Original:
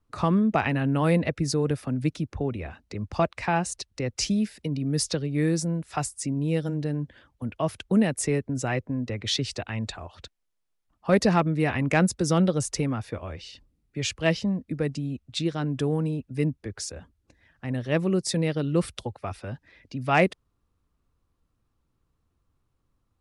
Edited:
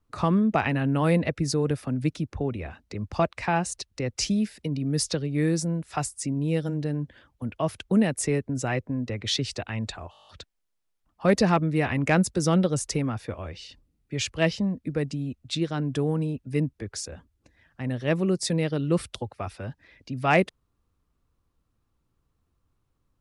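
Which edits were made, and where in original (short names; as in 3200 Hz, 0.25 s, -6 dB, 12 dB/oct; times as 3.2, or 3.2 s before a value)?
10.11 stutter 0.02 s, 9 plays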